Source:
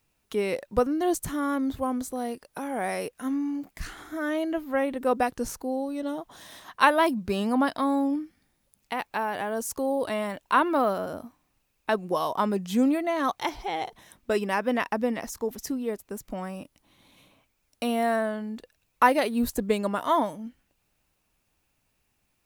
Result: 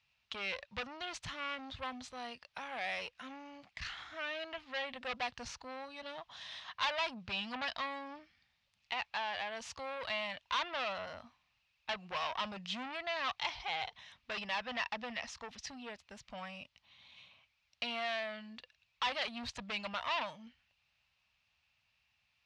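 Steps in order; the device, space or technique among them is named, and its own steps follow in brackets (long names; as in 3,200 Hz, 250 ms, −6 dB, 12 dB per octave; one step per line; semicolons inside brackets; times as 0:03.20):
scooped metal amplifier (tube saturation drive 28 dB, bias 0.4; loudspeaker in its box 83–4,500 Hz, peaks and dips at 250 Hz +6 dB, 420 Hz −5 dB, 1,500 Hz −3 dB, 2,700 Hz +3 dB; guitar amp tone stack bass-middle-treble 10-0-10)
level +6 dB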